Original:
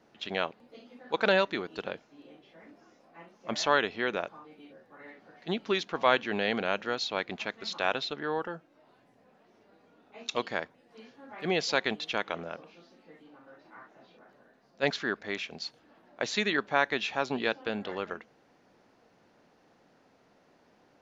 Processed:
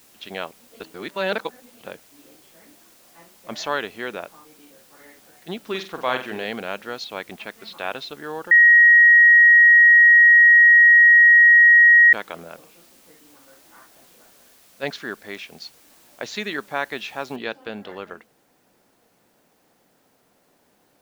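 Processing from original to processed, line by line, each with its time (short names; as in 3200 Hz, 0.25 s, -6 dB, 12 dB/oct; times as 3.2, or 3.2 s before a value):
0.8–1.81 reverse
5.6–6.45 flutter echo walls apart 8 m, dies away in 0.35 s
7.04–7.96 LPF 4200 Hz 24 dB/oct
8.51–12.13 bleep 1890 Hz -8 dBFS
17.36 noise floor step -54 dB -68 dB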